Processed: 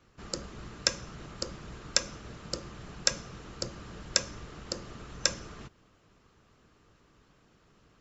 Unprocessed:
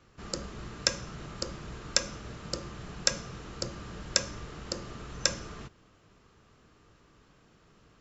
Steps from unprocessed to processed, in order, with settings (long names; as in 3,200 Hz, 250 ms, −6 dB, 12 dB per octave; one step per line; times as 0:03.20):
harmonic and percussive parts rebalanced harmonic −5 dB